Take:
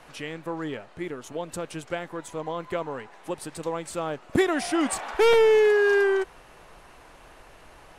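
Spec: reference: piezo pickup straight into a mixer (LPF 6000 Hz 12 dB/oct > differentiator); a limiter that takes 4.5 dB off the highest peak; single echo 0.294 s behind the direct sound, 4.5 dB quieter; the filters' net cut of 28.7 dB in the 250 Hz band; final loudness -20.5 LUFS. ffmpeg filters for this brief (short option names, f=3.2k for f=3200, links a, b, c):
-af "equalizer=f=250:t=o:g=-3.5,alimiter=limit=-17.5dB:level=0:latency=1,lowpass=6k,aderivative,aecho=1:1:294:0.596,volume=22.5dB"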